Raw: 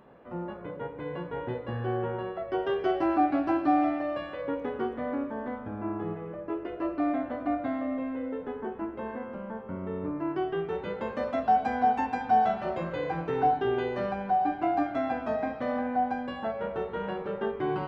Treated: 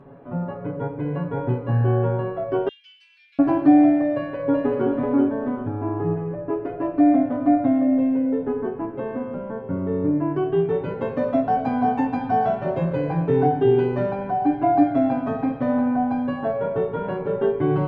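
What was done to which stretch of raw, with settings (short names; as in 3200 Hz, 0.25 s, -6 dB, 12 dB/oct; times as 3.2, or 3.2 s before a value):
2.68–3.39 steep high-pass 2700 Hz
4.15–4.9 echo throw 0.38 s, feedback 30%, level -4.5 dB
whole clip: HPF 95 Hz 6 dB/oct; tilt -3.5 dB/oct; comb 7.2 ms, depth 100%; gain +2 dB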